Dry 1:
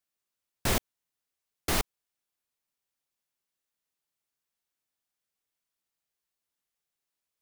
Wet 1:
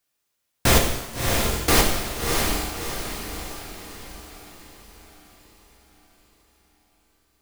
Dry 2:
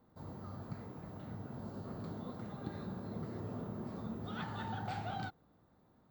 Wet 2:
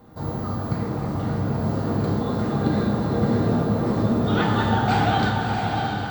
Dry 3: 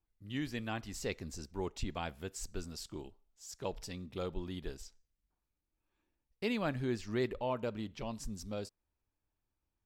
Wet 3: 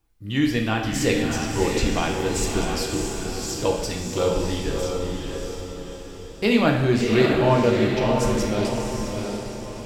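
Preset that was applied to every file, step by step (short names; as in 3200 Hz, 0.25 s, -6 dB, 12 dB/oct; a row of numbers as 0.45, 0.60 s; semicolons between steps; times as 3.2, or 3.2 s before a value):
on a send: diffused feedback echo 0.648 s, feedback 48%, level -3.5 dB; on the sum: two-slope reverb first 0.96 s, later 2.8 s, DRR 1 dB; match loudness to -23 LUFS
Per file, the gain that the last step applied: +8.5, +17.0, +13.0 dB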